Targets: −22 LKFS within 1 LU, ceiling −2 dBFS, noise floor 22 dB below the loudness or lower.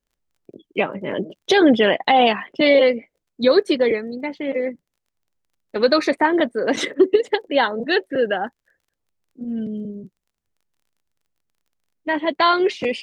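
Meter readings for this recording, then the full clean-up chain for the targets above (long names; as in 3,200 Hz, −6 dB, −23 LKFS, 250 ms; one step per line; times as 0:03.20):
crackle rate 24 per second; integrated loudness −19.5 LKFS; sample peak −4.0 dBFS; target loudness −22.0 LKFS
→ click removal
level −2.5 dB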